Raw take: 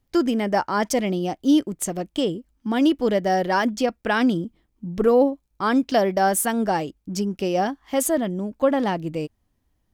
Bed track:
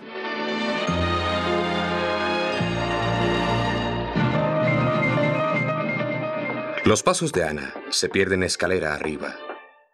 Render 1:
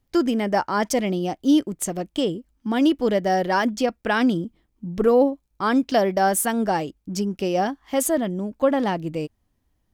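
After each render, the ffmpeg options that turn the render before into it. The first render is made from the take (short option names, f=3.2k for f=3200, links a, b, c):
-af anull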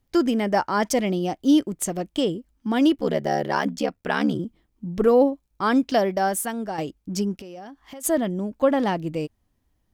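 -filter_complex "[0:a]asplit=3[a][b][c];[a]afade=t=out:st=2.95:d=0.02[d];[b]aeval=exprs='val(0)*sin(2*PI*36*n/s)':c=same,afade=t=in:st=2.95:d=0.02,afade=t=out:st=4.38:d=0.02[e];[c]afade=t=in:st=4.38:d=0.02[f];[d][e][f]amix=inputs=3:normalize=0,asplit=3[g][h][i];[g]afade=t=out:st=7.35:d=0.02[j];[h]acompressor=threshold=-36dB:ratio=10:attack=3.2:release=140:knee=1:detection=peak,afade=t=in:st=7.35:d=0.02,afade=t=out:st=8.03:d=0.02[k];[i]afade=t=in:st=8.03:d=0.02[l];[j][k][l]amix=inputs=3:normalize=0,asplit=2[m][n];[m]atrim=end=6.78,asetpts=PTS-STARTPTS,afade=t=out:st=5.8:d=0.98:silence=0.334965[o];[n]atrim=start=6.78,asetpts=PTS-STARTPTS,afade=t=in:d=0.004:c=hsin:silence=0.334965[p];[o][p]concat=n=2:v=0:a=1"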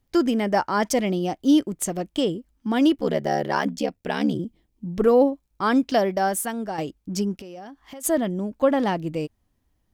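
-filter_complex "[0:a]asettb=1/sr,asplit=3[a][b][c];[a]atrim=end=3.734[d];[b]atrim=start=3.73:end=4.85,asetpts=PTS-STARTPTS,afade=t=in:d=0.004:c=qsin,afade=t=out:st=1.116:d=0.004:c=qsin,equalizer=f=1.3k:t=o:w=0.83:g=-8.5[e];[c]atrim=start=4.846[f];[d][e]acrossfade=d=0.004:c1=hsin:c2=qsin[g];[g][f]acrossfade=d=0.004:c1=qsin:c2=hsin"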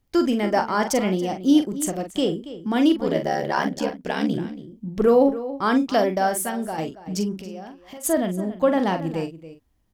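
-filter_complex "[0:a]asplit=2[a][b];[b]adelay=43,volume=-8dB[c];[a][c]amix=inputs=2:normalize=0,asplit=2[d][e];[e]adelay=279.9,volume=-14dB,highshelf=f=4k:g=-6.3[f];[d][f]amix=inputs=2:normalize=0"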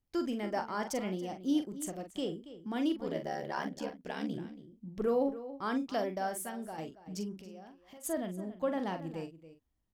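-af "volume=-13.5dB"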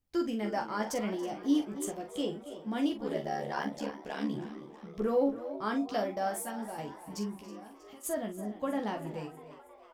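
-filter_complex "[0:a]asplit=2[a][b];[b]adelay=14,volume=-4dB[c];[a][c]amix=inputs=2:normalize=0,asplit=7[d][e][f][g][h][i][j];[e]adelay=320,afreqshift=100,volume=-16.5dB[k];[f]adelay=640,afreqshift=200,volume=-20.7dB[l];[g]adelay=960,afreqshift=300,volume=-24.8dB[m];[h]adelay=1280,afreqshift=400,volume=-29dB[n];[i]adelay=1600,afreqshift=500,volume=-33.1dB[o];[j]adelay=1920,afreqshift=600,volume=-37.3dB[p];[d][k][l][m][n][o][p]amix=inputs=7:normalize=0"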